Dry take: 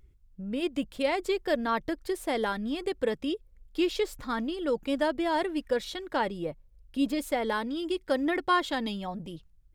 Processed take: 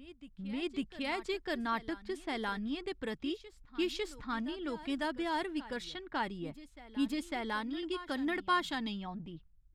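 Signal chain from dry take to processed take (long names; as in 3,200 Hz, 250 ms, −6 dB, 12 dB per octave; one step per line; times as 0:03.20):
low-pass that shuts in the quiet parts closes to 1,500 Hz, open at −23 dBFS
parametric band 530 Hz −12.5 dB 0.63 octaves
on a send: backwards echo 551 ms −16 dB
on the sum: level −4 dB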